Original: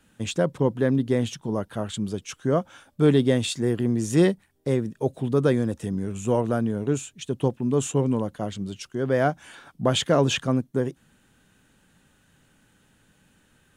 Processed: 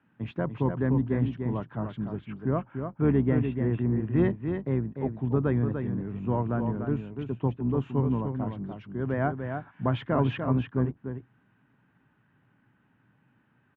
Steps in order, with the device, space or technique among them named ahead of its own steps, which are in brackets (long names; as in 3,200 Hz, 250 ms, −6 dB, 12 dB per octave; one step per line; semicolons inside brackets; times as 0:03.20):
0:02.15–0:04.16: Butterworth low-pass 3,000 Hz 36 dB per octave
single-tap delay 295 ms −6.5 dB
sub-octave bass pedal (sub-octave generator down 2 octaves, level −3 dB; loudspeaker in its box 81–2,300 Hz, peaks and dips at 82 Hz −8 dB, 120 Hz +8 dB, 260 Hz +3 dB, 510 Hz −6 dB, 990 Hz +5 dB)
level −6 dB